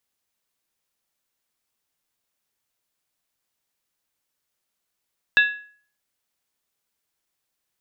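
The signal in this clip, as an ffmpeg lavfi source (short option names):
-f lavfi -i "aevalsrc='0.299*pow(10,-3*t/0.48)*sin(2*PI*1680*t)+0.15*pow(10,-3*t/0.38)*sin(2*PI*2677.9*t)+0.075*pow(10,-3*t/0.328)*sin(2*PI*3588.5*t)+0.0376*pow(10,-3*t/0.317)*sin(2*PI*3857.3*t)':d=0.63:s=44100"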